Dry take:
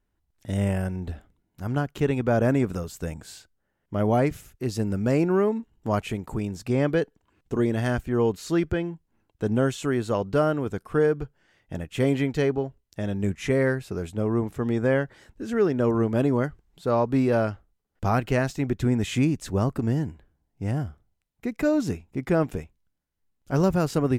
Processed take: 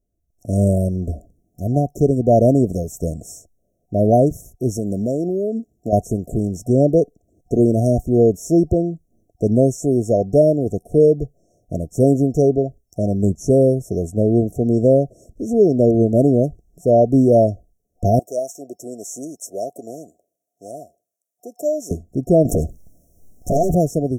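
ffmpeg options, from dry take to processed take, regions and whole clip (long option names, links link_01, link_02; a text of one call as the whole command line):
ffmpeg -i in.wav -filter_complex "[0:a]asettb=1/sr,asplit=3[link_01][link_02][link_03];[link_01]atrim=end=4.774[link_04];[link_02]atrim=start=4.77:end=5.93,asetpts=PTS-STARTPTS,afade=type=in:duration=0.004:curve=qsin,afade=type=out:start_time=1.156:duration=0.004:curve=qsin,highpass=frequency=200:poles=1,acompressor=threshold=-26dB:ratio=10:attack=3.2:release=140:knee=1:detection=peak[link_05];[link_03]atrim=start=5.926[link_06];[link_04][link_05]acrossfade=duration=0.004:curve1=hsin:curve2=qsin[link_07];[link_07][link_06]acrossfade=duration=0.004:curve1=qsin:curve2=hsin,asettb=1/sr,asplit=3[link_08][link_09][link_10];[link_08]atrim=end=18.194[link_11];[link_09]atrim=start=18.19:end=21.91,asetpts=PTS-STARTPTS,afade=type=in:duration=0.004:curve=qsin,afade=type=out:start_time=3.716:duration=0.004:curve=qsin,highpass=820,equalizer=frequency=4200:width_type=o:width=0.32:gain=-14.5[link_12];[link_10]atrim=start=21.906[link_13];[link_11][link_12]acrossfade=duration=0.004:curve1=hsin:curve2=qsin[link_14];[link_14][link_13]acrossfade=duration=0.004:curve1=qsin:curve2=hsin,asettb=1/sr,asplit=3[link_15][link_16][link_17];[link_15]atrim=end=22.454[link_18];[link_16]atrim=start=22.45:end=23.75,asetpts=PTS-STARTPTS,afade=type=in:duration=0.004:curve=qsin,afade=type=out:start_time=1.296:duration=0.004:curve=qsin,acompressor=threshold=-44dB:ratio=2:attack=3.2:release=140:knee=1:detection=peak,aeval=exprs='0.0891*sin(PI/2*6.31*val(0)/0.0891)':channel_layout=same[link_19];[link_17]atrim=start=23.746[link_20];[link_18][link_19]acrossfade=duration=0.004:curve1=hsin:curve2=qsin[link_21];[link_21][link_20]acrossfade=duration=0.004:curve1=qsin:curve2=hsin,afftfilt=real='re*(1-between(b*sr/4096,730,5400))':imag='im*(1-between(b*sr/4096,730,5400))':win_size=4096:overlap=0.75,equalizer=frequency=710:width=2.3:gain=5,dynaudnorm=framelen=130:gausssize=7:maxgain=9dB" out.wav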